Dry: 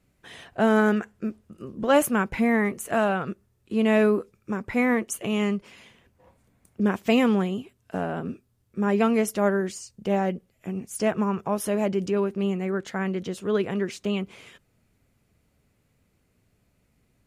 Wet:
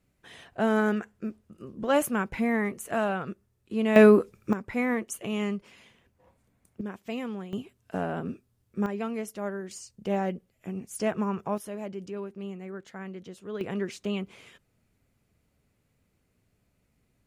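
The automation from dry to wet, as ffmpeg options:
-af "asetnsamples=n=441:p=0,asendcmd='3.96 volume volume 5dB;4.53 volume volume -5dB;6.81 volume volume -14dB;7.53 volume volume -2dB;8.86 volume volume -11dB;9.71 volume volume -4dB;11.58 volume volume -12dB;13.61 volume volume -4dB',volume=-4.5dB"

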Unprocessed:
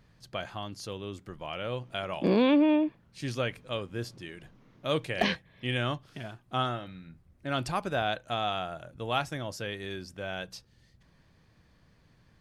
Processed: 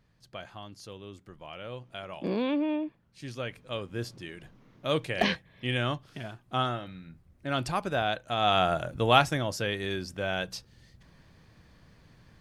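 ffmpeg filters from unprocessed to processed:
-af "volume=12dB,afade=t=in:st=3.35:d=0.66:silence=0.446684,afade=t=in:st=8.35:d=0.37:silence=0.281838,afade=t=out:st=8.72:d=0.74:silence=0.473151"

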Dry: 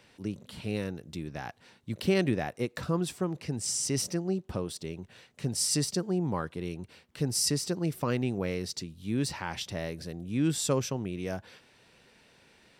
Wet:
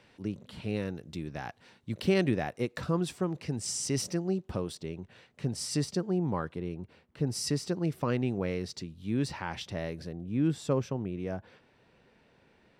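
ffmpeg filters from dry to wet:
-af "asetnsamples=n=441:p=0,asendcmd='0.87 lowpass f 6200;4.75 lowpass f 2700;6.59 lowpass f 1200;7.27 lowpass f 3000;10.09 lowpass f 1200',lowpass=f=3.5k:p=1"

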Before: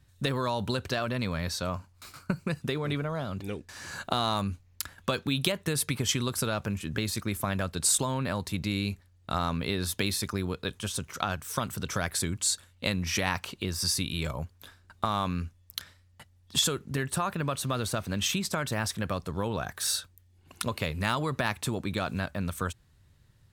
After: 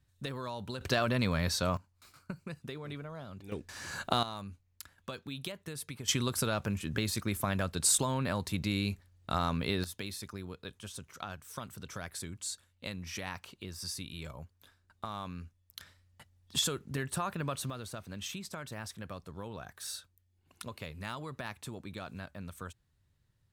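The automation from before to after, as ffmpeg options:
-af "asetnsamples=n=441:p=0,asendcmd='0.81 volume volume 1dB;1.77 volume volume -11.5dB;3.52 volume volume -1dB;4.23 volume volume -13dB;6.08 volume volume -2dB;9.84 volume volume -11.5dB;15.8 volume volume -5dB;17.7 volume volume -12dB',volume=-10dB"

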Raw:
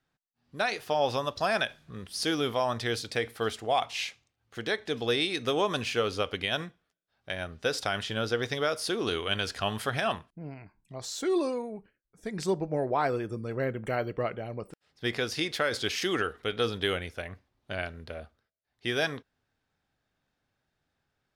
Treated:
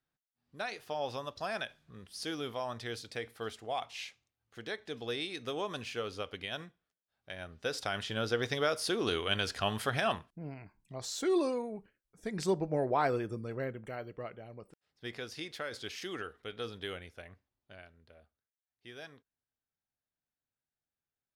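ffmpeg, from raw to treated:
-af "volume=-2dB,afade=t=in:st=7.31:d=1.2:silence=0.421697,afade=t=out:st=13.16:d=0.76:silence=0.334965,afade=t=out:st=17.28:d=0.55:silence=0.398107"

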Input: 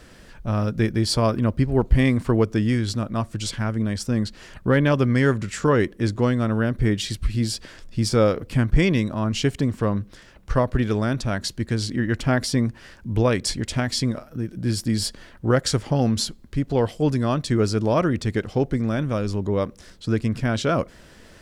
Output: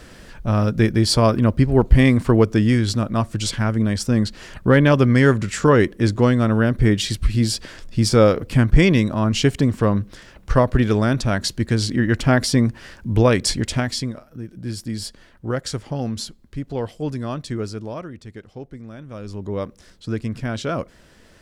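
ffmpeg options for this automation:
-af "volume=15.5dB,afade=t=out:st=13.62:d=0.5:silence=0.334965,afade=t=out:st=17.47:d=0.61:silence=0.354813,afade=t=in:st=19.05:d=0.52:silence=0.281838"

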